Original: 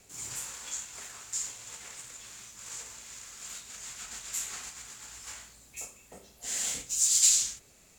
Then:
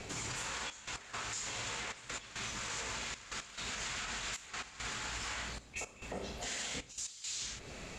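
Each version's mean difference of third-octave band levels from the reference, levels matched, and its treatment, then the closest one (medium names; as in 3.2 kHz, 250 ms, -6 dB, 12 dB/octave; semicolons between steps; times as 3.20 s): 12.5 dB: low-pass 3.8 kHz 12 dB/octave; compression 6:1, threshold -50 dBFS, peak gain reduction 20 dB; peak limiter -47 dBFS, peak gain reduction 9 dB; trance gate "xxxxxxxx..x..x" 172 bpm -12 dB; trim +16.5 dB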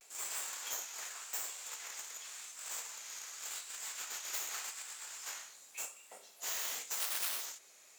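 8.5 dB: tracing distortion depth 0.36 ms; high-pass 660 Hz 12 dB/octave; compression 6:1, threshold -34 dBFS, peak gain reduction 14.5 dB; vibrato 0.87 Hz 82 cents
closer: second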